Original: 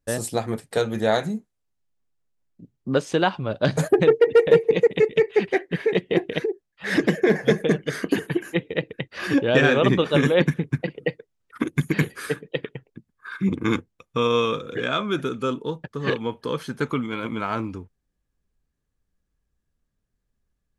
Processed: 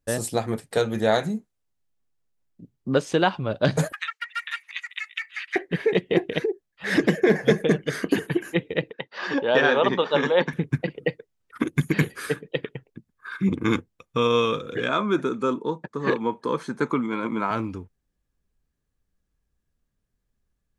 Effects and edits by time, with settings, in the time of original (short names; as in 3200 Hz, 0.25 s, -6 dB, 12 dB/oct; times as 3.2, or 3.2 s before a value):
3.92–5.56 steep high-pass 1200 Hz 48 dB/oct
8.9–10.53 speaker cabinet 290–5400 Hz, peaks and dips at 320 Hz -7 dB, 910 Hz +8 dB, 2400 Hz -6 dB
14.89–17.51 speaker cabinet 170–9200 Hz, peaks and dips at 210 Hz +4 dB, 340 Hz +4 dB, 980 Hz +7 dB, 3000 Hz -10 dB, 5000 Hz -5 dB